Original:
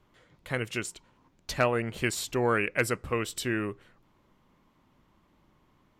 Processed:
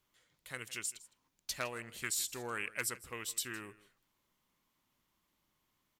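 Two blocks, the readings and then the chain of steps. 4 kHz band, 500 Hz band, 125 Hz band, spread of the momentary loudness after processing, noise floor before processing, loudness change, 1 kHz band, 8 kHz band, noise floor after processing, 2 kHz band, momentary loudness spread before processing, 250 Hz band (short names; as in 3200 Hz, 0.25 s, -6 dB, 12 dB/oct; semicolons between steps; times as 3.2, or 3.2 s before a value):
-5.0 dB, -17.0 dB, -18.5 dB, 12 LU, -67 dBFS, -9.0 dB, -13.0 dB, +0.5 dB, -81 dBFS, -10.0 dB, 11 LU, -17.5 dB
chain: pre-emphasis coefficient 0.9; echo 0.16 s -19 dB; Doppler distortion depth 0.15 ms; gain +1 dB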